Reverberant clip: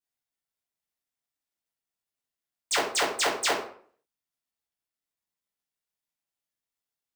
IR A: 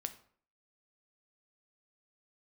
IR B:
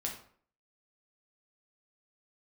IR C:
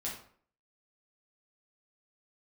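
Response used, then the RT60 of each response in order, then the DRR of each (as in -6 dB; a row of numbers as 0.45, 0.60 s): C; 0.55, 0.55, 0.55 s; 8.5, -1.0, -5.5 dB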